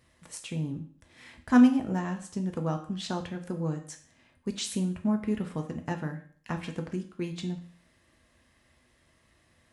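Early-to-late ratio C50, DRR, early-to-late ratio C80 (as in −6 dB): 11.0 dB, 4.0 dB, 14.5 dB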